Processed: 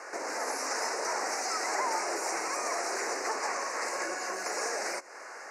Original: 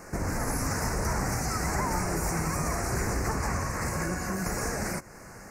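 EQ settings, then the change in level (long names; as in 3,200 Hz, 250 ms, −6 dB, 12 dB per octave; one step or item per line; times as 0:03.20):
Bessel high-pass filter 620 Hz, order 6
low-pass filter 5,500 Hz 12 dB per octave
dynamic equaliser 1,400 Hz, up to −6 dB, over −48 dBFS, Q 0.82
+6.0 dB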